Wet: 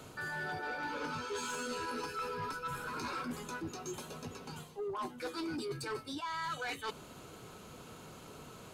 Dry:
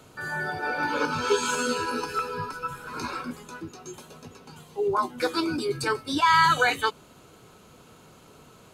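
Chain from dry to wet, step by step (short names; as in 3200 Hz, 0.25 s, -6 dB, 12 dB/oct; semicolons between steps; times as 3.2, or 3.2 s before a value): reverse; compressor 12:1, threshold -34 dBFS, peak gain reduction 19 dB; reverse; soft clip -34 dBFS, distortion -14 dB; gain +1 dB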